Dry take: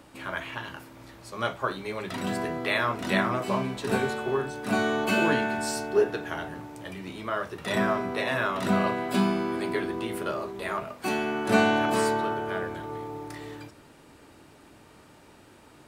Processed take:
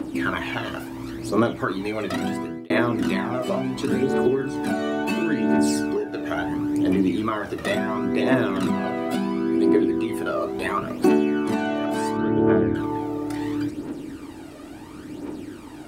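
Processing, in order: bell 300 Hz +15 dB 0.81 oct; compressor 6:1, threshold -28 dBFS, peak gain reduction 17.5 dB; phaser 0.72 Hz, delay 1.7 ms, feedback 55%; 2.26–2.7 fade out; 12.17–12.75 tone controls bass +6 dB, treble -13 dB; gain +7 dB

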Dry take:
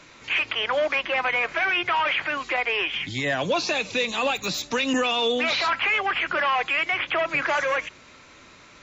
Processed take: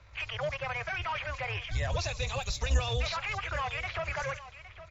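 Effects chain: octaver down 2 oct, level +3 dB; tempo 1.8×; low-pass opened by the level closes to 2700 Hz, open at -19 dBFS; EQ curve 110 Hz 0 dB, 200 Hz -19 dB, 290 Hz -23 dB, 550 Hz -9 dB, 3100 Hz -12 dB, 5300 Hz -3 dB; on a send: echo 0.813 s -14.5 dB

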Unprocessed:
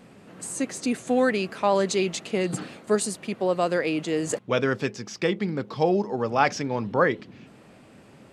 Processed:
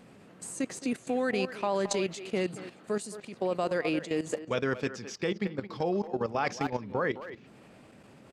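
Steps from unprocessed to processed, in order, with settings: speakerphone echo 0.22 s, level -9 dB; level quantiser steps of 13 dB; gain -2 dB

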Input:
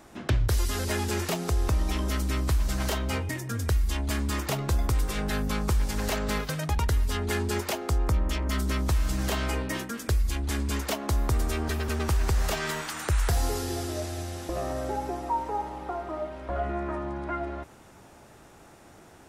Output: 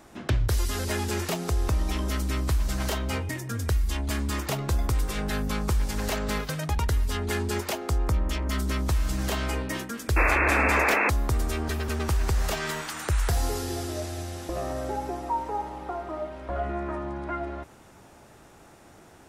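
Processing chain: painted sound noise, 10.16–11.1, 250–2700 Hz -23 dBFS

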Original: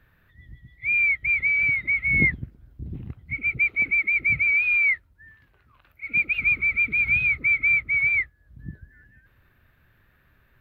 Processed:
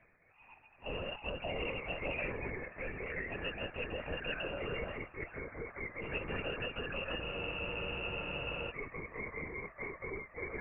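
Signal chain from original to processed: de-hum 76.21 Hz, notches 29; spectral gate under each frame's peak -20 dB weak; compressor, threshold -43 dBFS, peak gain reduction 10 dB; inverted band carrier 2800 Hz; echoes that change speed 0.419 s, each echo -4 st, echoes 2; LPC vocoder at 8 kHz whisper; spectral freeze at 7.24, 1.46 s; gain +7 dB

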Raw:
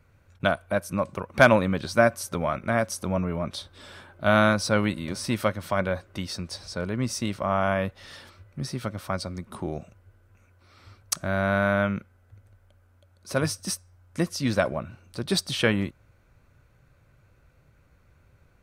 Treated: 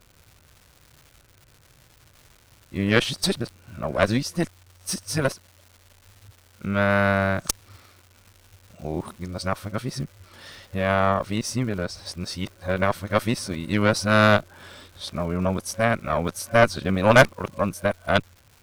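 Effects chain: whole clip reversed; added harmonics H 4 -13 dB, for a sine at -4 dBFS; crackle 390/s -42 dBFS; gain +1.5 dB

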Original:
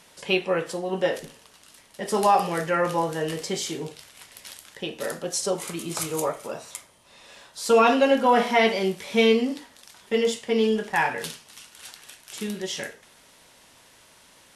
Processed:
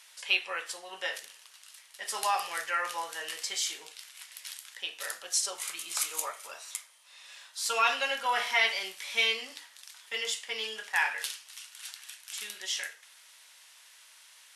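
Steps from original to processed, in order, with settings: HPF 1500 Hz 12 dB/oct

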